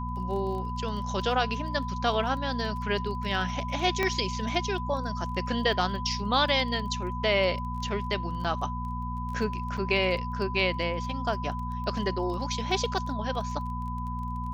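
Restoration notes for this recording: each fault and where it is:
surface crackle 21 per second −37 dBFS
mains hum 60 Hz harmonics 4 −34 dBFS
whistle 1,000 Hz −35 dBFS
0:04.03: click −12 dBFS
0:08.44–0:08.45: drop-out 5.7 ms
0:09.77–0:09.78: drop-out 5.6 ms

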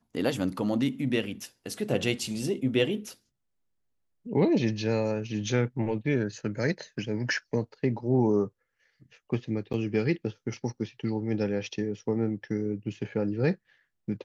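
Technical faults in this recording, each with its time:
0:09.73–0:09.74: drop-out 8.1 ms

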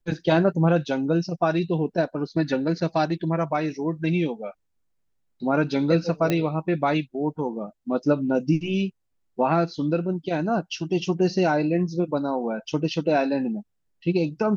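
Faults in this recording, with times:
0:06.30: click −10 dBFS

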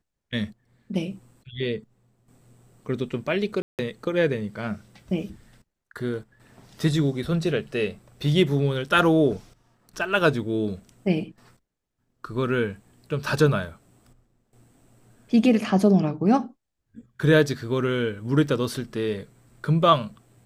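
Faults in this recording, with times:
0:03.62–0:03.79: drop-out 168 ms

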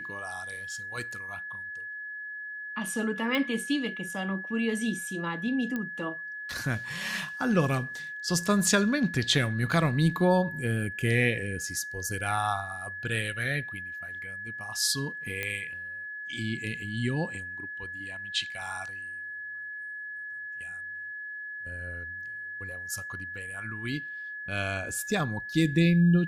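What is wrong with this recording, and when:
whistle 1,700 Hz −36 dBFS
0:03.35: click −17 dBFS
0:05.76: click −20 dBFS
0:15.43: click −17 dBFS

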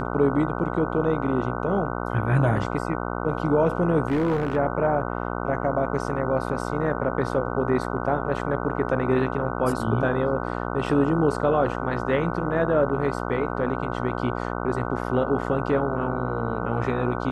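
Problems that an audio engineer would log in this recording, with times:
mains buzz 60 Hz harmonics 25 −29 dBFS
0:04.08–0:04.57: clipping −19 dBFS

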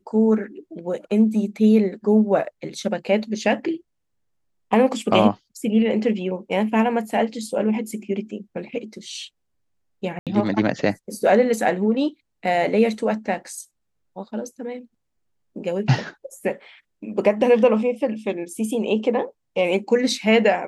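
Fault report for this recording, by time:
0:10.19–0:10.27: drop-out 77 ms

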